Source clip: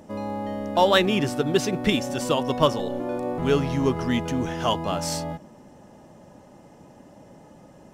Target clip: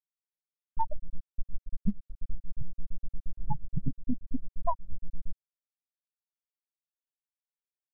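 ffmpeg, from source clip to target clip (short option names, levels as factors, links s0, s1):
-filter_complex "[0:a]crystalizer=i=1:c=0,aresample=11025,aeval=exprs='max(val(0),0)':c=same,aresample=44100,bandreject=f=60:t=h:w=6,bandreject=f=120:t=h:w=6,bandreject=f=180:t=h:w=6,bandreject=f=240:t=h:w=6,bandreject=f=300:t=h:w=6,bandreject=f=360:t=h:w=6,bandreject=f=420:t=h:w=6,bandreject=f=480:t=h:w=6,bandreject=f=540:t=h:w=6,aecho=1:1:1.2:0.69,aresample=8000,aresample=44100,dynaudnorm=f=280:g=13:m=6.31,acrossover=split=1500[s0][s1];[s0]aeval=exprs='val(0)*(1-0.7/2+0.7/2*cos(2*PI*8.5*n/s))':c=same[s2];[s1]aeval=exprs='val(0)*(1-0.7/2-0.7/2*cos(2*PI*8.5*n/s))':c=same[s3];[s2][s3]amix=inputs=2:normalize=0,afftfilt=real='re*gte(hypot(re,im),0.708)':imag='im*gte(hypot(re,im),0.708)':win_size=1024:overlap=0.75,equalizer=f=200:t=o:w=0.38:g=7.5,aeval=exprs='sgn(val(0))*max(abs(val(0))-0.00237,0)':c=same,acompressor=threshold=0.02:ratio=5,volume=3.16"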